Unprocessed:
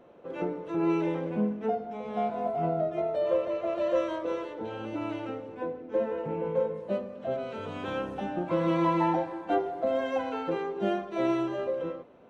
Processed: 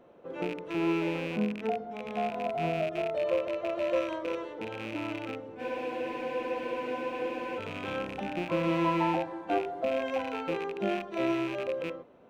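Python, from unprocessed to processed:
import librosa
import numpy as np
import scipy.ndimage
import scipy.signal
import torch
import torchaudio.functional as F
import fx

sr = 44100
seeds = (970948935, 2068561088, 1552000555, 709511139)

y = fx.rattle_buzz(x, sr, strikes_db=-41.0, level_db=-27.0)
y = fx.spec_freeze(y, sr, seeds[0], at_s=5.61, hold_s=1.98)
y = F.gain(torch.from_numpy(y), -2.0).numpy()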